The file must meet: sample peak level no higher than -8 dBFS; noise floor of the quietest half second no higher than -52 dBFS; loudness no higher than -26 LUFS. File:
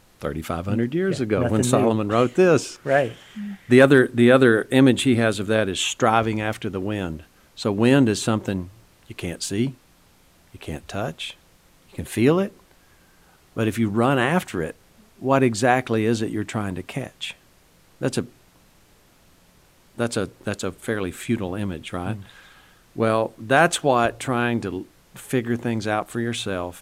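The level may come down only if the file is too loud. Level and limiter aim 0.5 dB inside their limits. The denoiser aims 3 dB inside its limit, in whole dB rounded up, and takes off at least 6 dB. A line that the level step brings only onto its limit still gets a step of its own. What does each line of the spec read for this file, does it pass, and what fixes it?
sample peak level -2.5 dBFS: fail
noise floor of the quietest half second -56 dBFS: OK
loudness -21.5 LUFS: fail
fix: gain -5 dB; limiter -8.5 dBFS

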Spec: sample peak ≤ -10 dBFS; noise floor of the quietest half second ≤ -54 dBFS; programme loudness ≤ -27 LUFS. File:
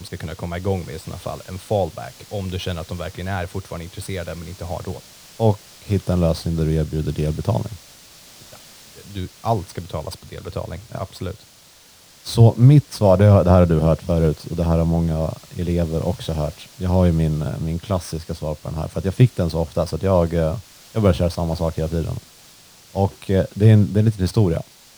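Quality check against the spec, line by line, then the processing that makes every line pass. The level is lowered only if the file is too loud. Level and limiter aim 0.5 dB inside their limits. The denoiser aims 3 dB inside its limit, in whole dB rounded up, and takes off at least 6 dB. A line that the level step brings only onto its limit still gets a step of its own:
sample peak -2.5 dBFS: fail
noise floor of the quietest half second -49 dBFS: fail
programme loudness -20.5 LUFS: fail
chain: gain -7 dB; limiter -10.5 dBFS

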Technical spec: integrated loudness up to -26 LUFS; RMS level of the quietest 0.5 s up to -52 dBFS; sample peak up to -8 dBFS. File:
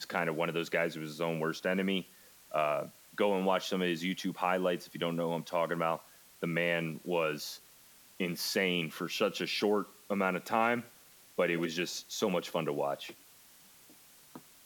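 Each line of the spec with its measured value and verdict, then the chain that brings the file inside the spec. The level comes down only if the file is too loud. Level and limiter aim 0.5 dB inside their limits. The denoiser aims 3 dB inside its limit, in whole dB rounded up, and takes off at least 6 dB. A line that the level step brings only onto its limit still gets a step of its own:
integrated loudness -33.0 LUFS: OK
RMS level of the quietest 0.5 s -59 dBFS: OK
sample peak -15.0 dBFS: OK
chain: none

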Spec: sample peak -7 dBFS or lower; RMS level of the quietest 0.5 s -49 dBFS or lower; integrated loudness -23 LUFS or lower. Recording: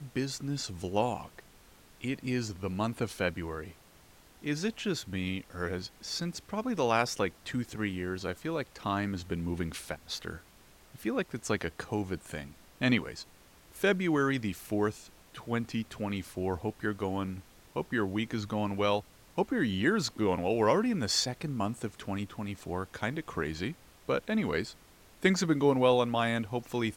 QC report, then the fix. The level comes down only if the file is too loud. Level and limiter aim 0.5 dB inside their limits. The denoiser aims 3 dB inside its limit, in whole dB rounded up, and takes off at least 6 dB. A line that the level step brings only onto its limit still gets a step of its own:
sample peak -11.5 dBFS: OK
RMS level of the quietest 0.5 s -58 dBFS: OK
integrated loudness -32.5 LUFS: OK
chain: none

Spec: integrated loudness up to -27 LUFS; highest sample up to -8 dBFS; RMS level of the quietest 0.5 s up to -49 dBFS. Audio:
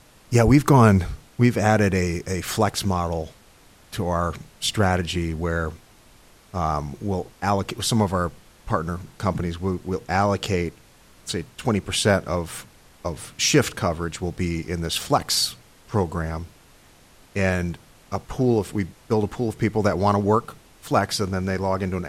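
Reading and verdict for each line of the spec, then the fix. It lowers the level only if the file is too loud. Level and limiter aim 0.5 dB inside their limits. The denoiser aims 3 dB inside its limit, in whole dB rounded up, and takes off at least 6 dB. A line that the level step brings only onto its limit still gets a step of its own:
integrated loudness -23.5 LUFS: fail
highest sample -3.5 dBFS: fail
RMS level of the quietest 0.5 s -52 dBFS: OK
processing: gain -4 dB; limiter -8.5 dBFS

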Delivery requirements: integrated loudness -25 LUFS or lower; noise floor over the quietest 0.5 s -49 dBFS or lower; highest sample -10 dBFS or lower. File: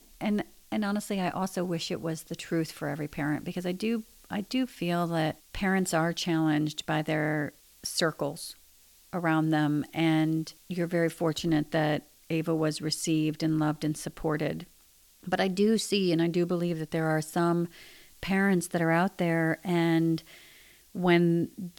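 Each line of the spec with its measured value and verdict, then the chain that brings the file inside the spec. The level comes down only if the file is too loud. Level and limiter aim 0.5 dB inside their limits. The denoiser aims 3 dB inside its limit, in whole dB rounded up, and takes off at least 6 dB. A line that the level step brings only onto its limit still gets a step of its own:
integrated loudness -29.0 LUFS: OK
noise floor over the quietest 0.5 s -60 dBFS: OK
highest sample -13.0 dBFS: OK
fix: none

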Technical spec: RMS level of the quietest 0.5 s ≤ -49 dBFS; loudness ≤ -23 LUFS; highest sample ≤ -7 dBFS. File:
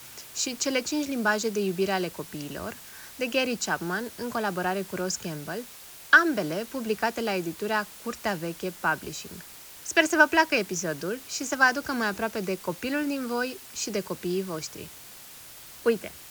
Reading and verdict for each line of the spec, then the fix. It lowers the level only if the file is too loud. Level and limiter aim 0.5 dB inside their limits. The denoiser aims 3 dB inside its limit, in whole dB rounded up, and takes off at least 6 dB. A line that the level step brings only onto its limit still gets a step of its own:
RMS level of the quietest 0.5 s -46 dBFS: fail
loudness -27.5 LUFS: OK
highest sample -4.5 dBFS: fail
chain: denoiser 6 dB, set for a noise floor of -46 dBFS; limiter -7.5 dBFS

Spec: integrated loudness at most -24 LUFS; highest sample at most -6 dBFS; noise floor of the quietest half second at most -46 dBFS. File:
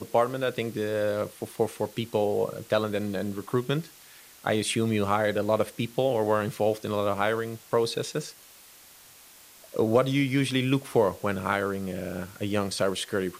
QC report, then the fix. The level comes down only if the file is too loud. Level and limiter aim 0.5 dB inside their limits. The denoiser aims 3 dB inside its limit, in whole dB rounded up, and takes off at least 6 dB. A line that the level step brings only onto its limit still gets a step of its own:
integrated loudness -27.5 LUFS: OK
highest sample -9.5 dBFS: OK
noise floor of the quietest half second -52 dBFS: OK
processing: none

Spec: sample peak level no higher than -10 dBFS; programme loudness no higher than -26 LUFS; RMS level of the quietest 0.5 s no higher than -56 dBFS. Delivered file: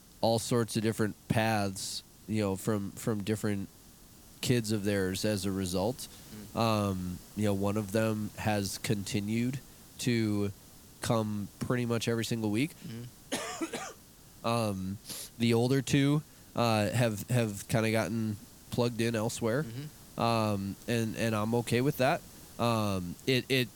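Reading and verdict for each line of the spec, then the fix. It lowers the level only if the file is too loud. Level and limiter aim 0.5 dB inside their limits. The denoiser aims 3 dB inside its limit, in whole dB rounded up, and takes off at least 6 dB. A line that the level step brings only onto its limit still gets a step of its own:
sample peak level -13.0 dBFS: OK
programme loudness -31.5 LUFS: OK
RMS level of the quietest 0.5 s -55 dBFS: fail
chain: denoiser 6 dB, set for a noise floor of -55 dBFS

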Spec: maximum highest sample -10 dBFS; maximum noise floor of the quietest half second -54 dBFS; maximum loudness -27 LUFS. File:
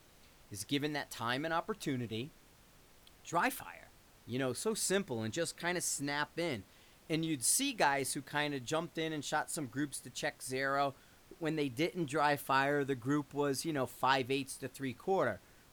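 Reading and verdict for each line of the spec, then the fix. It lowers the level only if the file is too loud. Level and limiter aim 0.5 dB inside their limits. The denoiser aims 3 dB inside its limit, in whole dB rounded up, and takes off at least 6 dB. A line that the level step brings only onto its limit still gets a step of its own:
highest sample -15.5 dBFS: OK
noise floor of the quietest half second -62 dBFS: OK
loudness -35.5 LUFS: OK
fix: none

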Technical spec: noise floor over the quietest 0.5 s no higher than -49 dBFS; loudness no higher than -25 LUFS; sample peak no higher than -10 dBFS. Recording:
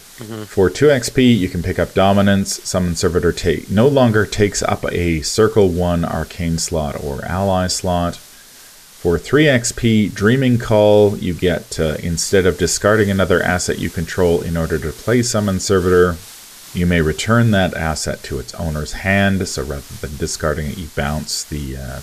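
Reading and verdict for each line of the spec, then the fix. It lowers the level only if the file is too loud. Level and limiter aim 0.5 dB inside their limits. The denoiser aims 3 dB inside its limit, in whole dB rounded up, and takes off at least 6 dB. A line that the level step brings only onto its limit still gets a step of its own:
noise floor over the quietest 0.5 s -42 dBFS: fail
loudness -16.5 LUFS: fail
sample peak -2.0 dBFS: fail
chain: gain -9 dB

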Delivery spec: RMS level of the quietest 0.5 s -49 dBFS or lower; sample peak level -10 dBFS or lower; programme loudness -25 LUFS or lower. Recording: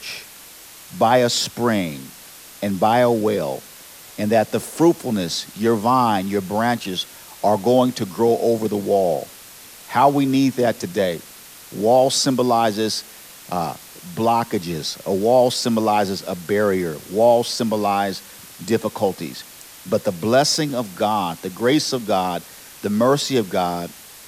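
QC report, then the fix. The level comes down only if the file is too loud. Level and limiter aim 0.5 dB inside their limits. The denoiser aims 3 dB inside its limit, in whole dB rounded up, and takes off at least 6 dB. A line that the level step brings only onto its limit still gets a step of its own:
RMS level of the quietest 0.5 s -42 dBFS: fail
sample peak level -2.5 dBFS: fail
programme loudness -20.0 LUFS: fail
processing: denoiser 6 dB, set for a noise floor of -42 dBFS; gain -5.5 dB; limiter -10.5 dBFS

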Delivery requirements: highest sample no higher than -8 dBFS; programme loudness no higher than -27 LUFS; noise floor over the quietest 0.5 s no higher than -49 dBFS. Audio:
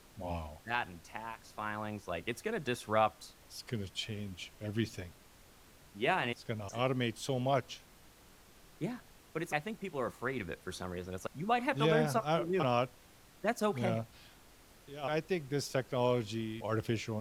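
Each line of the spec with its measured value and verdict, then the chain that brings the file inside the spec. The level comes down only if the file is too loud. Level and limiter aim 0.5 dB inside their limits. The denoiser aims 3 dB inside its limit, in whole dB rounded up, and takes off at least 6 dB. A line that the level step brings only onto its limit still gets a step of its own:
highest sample -16.0 dBFS: OK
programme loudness -35.5 LUFS: OK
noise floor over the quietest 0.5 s -60 dBFS: OK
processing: none

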